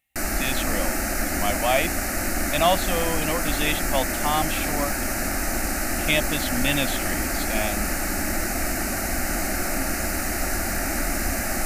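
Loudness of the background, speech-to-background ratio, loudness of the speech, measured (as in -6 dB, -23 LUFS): -25.5 LUFS, -1.5 dB, -27.0 LUFS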